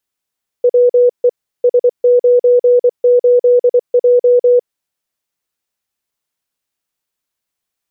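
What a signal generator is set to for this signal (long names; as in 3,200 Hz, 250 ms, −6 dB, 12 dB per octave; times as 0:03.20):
Morse code "WE S98J" 24 words per minute 490 Hz −5.5 dBFS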